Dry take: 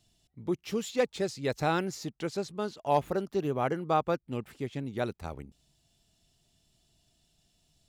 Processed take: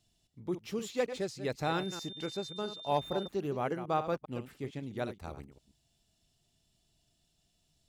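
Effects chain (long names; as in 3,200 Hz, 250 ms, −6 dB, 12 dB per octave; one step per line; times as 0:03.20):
delay that plays each chunk backwards 133 ms, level −10.5 dB
0:01.64–0:03.27: steady tone 3,600 Hz −40 dBFS
level −4.5 dB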